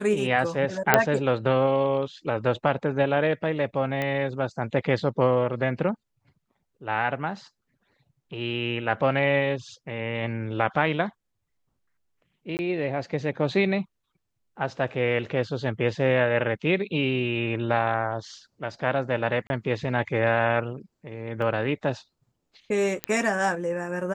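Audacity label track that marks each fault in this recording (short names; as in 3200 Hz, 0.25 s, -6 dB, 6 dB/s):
0.940000	0.940000	pop -1 dBFS
4.020000	4.020000	pop -15 dBFS
12.570000	12.590000	gap 19 ms
19.470000	19.500000	gap 31 ms
21.420000	21.420000	gap 2.2 ms
23.040000	23.040000	pop -10 dBFS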